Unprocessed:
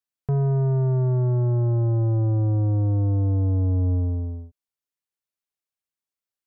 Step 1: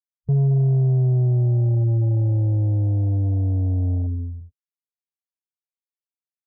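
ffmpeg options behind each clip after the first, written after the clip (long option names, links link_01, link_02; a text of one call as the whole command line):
ffmpeg -i in.wav -af "afwtdn=0.0562,equalizer=frequency=150:width=0.91:gain=8,volume=-4dB" out.wav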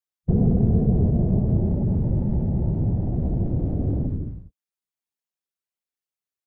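ffmpeg -i in.wav -af "aecho=1:1:4.7:0.38,afftfilt=real='hypot(re,im)*cos(2*PI*random(0))':imag='hypot(re,im)*sin(2*PI*random(1))':win_size=512:overlap=0.75,volume=7dB" out.wav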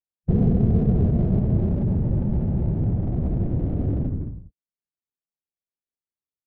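ffmpeg -i in.wav -af "adynamicsmooth=sensitivity=7.5:basefreq=650" out.wav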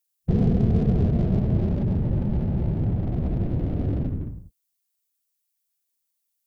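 ffmpeg -i in.wav -af "crystalizer=i=7:c=0,volume=-1.5dB" out.wav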